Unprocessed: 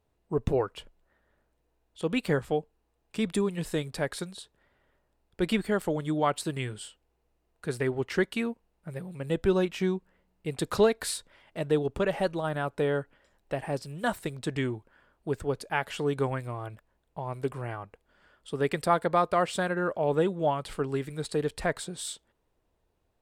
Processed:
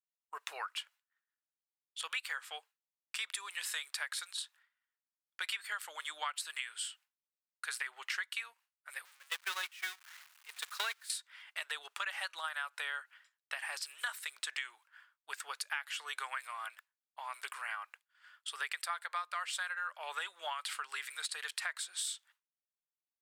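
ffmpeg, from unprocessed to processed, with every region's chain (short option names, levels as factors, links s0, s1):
-filter_complex "[0:a]asettb=1/sr,asplit=3[s0][s1][s2];[s0]atrim=end=9.054[s3];[s1]atrim=start=9.05:end=11.1,asetpts=PTS-STARTPTS,afade=t=in:d=0.004:c=qsin,afade=t=out:st=2.046:d=0.004:c=qsin,aeval=exprs='val(0)+0.5*0.0299*sgn(val(0))':c=same,agate=range=0.0447:threshold=0.0631:ratio=16:release=100:detection=peak,acontrast=81[s4];[s2]atrim=start=11.096[s5];[s3][s4]acrossfade=d=0.004:c1=hsin:c2=qsin[s6];[s6][s5]acrossfade=d=0.004:c1=qsin:c2=hsin,highpass=f=1300:w=0.5412,highpass=f=1300:w=1.3066,agate=range=0.0224:threshold=0.001:ratio=3:detection=peak,acompressor=threshold=0.00708:ratio=6,volume=2.37"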